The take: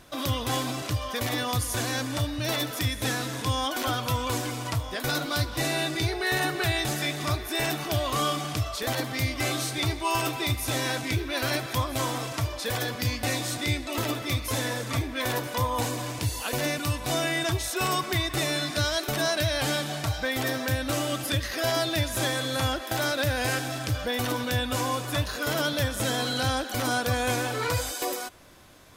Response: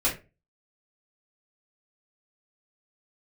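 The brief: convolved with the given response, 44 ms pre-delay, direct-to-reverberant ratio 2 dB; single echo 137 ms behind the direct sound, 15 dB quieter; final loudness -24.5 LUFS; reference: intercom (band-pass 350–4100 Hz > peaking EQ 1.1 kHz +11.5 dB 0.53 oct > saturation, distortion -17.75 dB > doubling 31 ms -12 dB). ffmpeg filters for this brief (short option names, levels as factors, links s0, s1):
-filter_complex "[0:a]aecho=1:1:137:0.178,asplit=2[s0][s1];[1:a]atrim=start_sample=2205,adelay=44[s2];[s1][s2]afir=irnorm=-1:irlink=0,volume=0.237[s3];[s0][s3]amix=inputs=2:normalize=0,highpass=350,lowpass=4100,equalizer=f=1100:t=o:w=0.53:g=11.5,asoftclip=threshold=0.188,asplit=2[s4][s5];[s5]adelay=31,volume=0.251[s6];[s4][s6]amix=inputs=2:normalize=0,volume=1.12"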